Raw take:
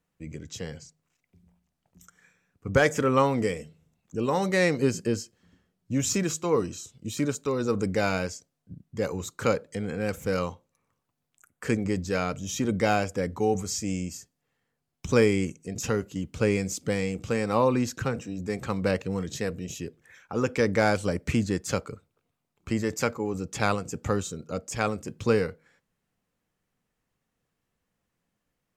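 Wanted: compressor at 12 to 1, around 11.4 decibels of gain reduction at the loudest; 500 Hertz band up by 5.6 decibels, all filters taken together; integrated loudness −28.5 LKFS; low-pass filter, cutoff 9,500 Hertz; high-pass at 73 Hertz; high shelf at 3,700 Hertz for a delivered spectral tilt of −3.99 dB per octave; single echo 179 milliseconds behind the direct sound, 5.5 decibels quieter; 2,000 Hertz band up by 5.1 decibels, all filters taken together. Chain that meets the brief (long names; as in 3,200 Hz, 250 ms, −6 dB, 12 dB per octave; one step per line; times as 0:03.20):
high-pass filter 73 Hz
low-pass filter 9,500 Hz
parametric band 500 Hz +6 dB
parametric band 2,000 Hz +4 dB
high-shelf EQ 3,700 Hz +8.5 dB
downward compressor 12 to 1, threshold −22 dBFS
single-tap delay 179 ms −5.5 dB
level −0.5 dB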